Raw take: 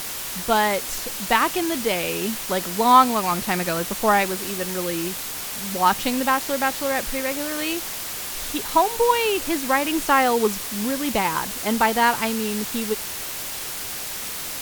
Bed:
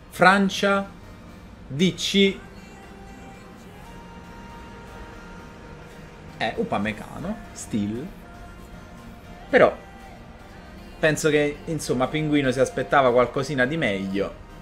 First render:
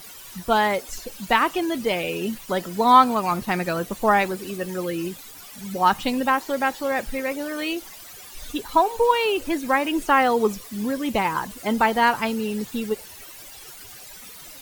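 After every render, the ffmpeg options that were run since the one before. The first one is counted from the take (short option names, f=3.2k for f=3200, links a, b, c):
-af "afftdn=nr=15:nf=-31"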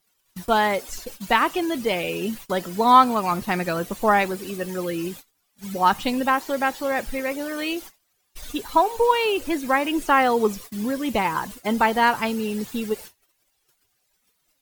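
-af "agate=range=-29dB:threshold=-37dB:ratio=16:detection=peak"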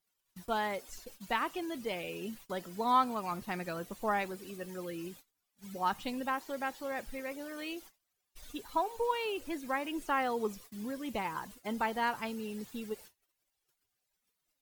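-af "volume=-13.5dB"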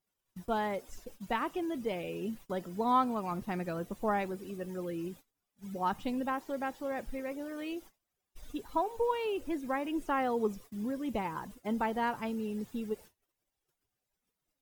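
-af "tiltshelf=f=880:g=5,bandreject=f=4.3k:w=15"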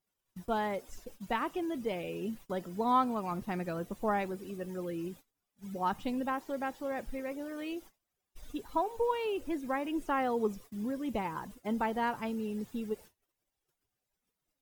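-af anull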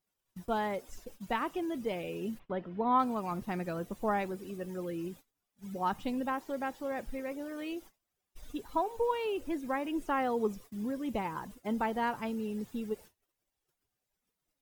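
-filter_complex "[0:a]asplit=3[a][b][c];[a]afade=t=out:st=2.38:d=0.02[d];[b]lowpass=f=3k:w=0.5412,lowpass=f=3k:w=1.3066,afade=t=in:st=2.38:d=0.02,afade=t=out:st=2.98:d=0.02[e];[c]afade=t=in:st=2.98:d=0.02[f];[d][e][f]amix=inputs=3:normalize=0"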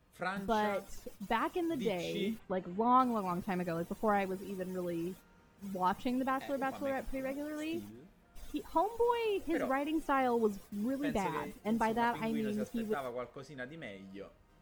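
-filter_complex "[1:a]volume=-22.5dB[a];[0:a][a]amix=inputs=2:normalize=0"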